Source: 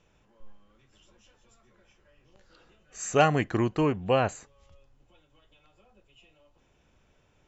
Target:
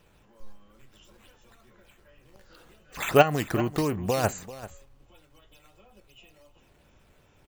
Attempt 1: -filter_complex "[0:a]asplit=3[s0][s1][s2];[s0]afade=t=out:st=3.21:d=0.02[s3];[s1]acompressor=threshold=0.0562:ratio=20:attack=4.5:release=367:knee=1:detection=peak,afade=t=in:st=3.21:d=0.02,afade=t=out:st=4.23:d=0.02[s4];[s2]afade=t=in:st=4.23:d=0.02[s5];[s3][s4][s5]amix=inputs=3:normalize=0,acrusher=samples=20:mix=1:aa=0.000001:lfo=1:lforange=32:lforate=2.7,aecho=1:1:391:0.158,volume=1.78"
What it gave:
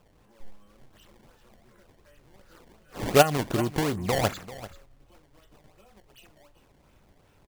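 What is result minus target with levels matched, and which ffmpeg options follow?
decimation with a swept rate: distortion +10 dB
-filter_complex "[0:a]asplit=3[s0][s1][s2];[s0]afade=t=out:st=3.21:d=0.02[s3];[s1]acompressor=threshold=0.0562:ratio=20:attack=4.5:release=367:knee=1:detection=peak,afade=t=in:st=3.21:d=0.02,afade=t=out:st=4.23:d=0.02[s4];[s2]afade=t=in:st=4.23:d=0.02[s5];[s3][s4][s5]amix=inputs=3:normalize=0,acrusher=samples=5:mix=1:aa=0.000001:lfo=1:lforange=8:lforate=2.7,aecho=1:1:391:0.158,volume=1.78"

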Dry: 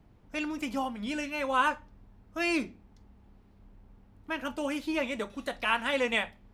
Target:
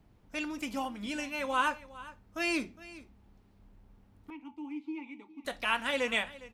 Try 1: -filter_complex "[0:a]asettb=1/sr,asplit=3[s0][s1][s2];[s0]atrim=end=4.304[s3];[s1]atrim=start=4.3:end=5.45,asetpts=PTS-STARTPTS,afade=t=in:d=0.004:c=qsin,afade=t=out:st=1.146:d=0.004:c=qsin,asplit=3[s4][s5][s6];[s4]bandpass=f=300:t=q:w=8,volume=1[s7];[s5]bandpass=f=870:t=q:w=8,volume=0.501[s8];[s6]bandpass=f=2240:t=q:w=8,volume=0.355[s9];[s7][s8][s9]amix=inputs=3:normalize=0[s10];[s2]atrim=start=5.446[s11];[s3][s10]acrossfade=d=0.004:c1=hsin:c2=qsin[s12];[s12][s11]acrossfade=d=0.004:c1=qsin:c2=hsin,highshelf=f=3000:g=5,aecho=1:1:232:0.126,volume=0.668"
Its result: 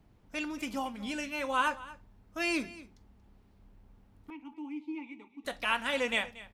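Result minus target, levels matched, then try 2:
echo 177 ms early
-filter_complex "[0:a]asettb=1/sr,asplit=3[s0][s1][s2];[s0]atrim=end=4.304[s3];[s1]atrim=start=4.3:end=5.45,asetpts=PTS-STARTPTS,afade=t=in:d=0.004:c=qsin,afade=t=out:st=1.146:d=0.004:c=qsin,asplit=3[s4][s5][s6];[s4]bandpass=f=300:t=q:w=8,volume=1[s7];[s5]bandpass=f=870:t=q:w=8,volume=0.501[s8];[s6]bandpass=f=2240:t=q:w=8,volume=0.355[s9];[s7][s8][s9]amix=inputs=3:normalize=0[s10];[s2]atrim=start=5.446[s11];[s3][s10]acrossfade=d=0.004:c1=hsin:c2=qsin[s12];[s12][s11]acrossfade=d=0.004:c1=qsin:c2=hsin,highshelf=f=3000:g=5,aecho=1:1:409:0.126,volume=0.668"

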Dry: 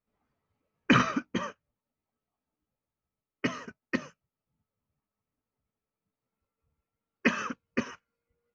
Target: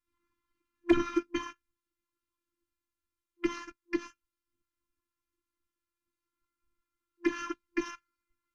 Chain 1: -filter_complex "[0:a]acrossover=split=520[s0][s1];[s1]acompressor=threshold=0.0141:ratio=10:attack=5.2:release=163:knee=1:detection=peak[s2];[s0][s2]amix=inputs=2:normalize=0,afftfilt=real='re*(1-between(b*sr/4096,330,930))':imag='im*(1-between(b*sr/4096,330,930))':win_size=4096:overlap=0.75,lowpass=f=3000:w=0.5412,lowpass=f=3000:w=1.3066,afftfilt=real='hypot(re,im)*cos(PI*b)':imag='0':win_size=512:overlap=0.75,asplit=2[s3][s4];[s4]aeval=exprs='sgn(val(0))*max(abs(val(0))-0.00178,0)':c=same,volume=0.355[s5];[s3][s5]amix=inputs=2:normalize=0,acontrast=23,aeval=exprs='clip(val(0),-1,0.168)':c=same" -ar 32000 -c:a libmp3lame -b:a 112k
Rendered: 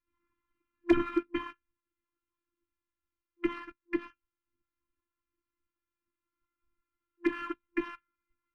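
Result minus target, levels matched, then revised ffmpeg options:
4 kHz band -4.0 dB
-filter_complex "[0:a]acrossover=split=520[s0][s1];[s1]acompressor=threshold=0.0141:ratio=10:attack=5.2:release=163:knee=1:detection=peak[s2];[s0][s2]amix=inputs=2:normalize=0,afftfilt=real='re*(1-between(b*sr/4096,330,930))':imag='im*(1-between(b*sr/4096,330,930))':win_size=4096:overlap=0.75,afftfilt=real='hypot(re,im)*cos(PI*b)':imag='0':win_size=512:overlap=0.75,asplit=2[s3][s4];[s4]aeval=exprs='sgn(val(0))*max(abs(val(0))-0.00178,0)':c=same,volume=0.355[s5];[s3][s5]amix=inputs=2:normalize=0,acontrast=23,aeval=exprs='clip(val(0),-1,0.168)':c=same" -ar 32000 -c:a libmp3lame -b:a 112k

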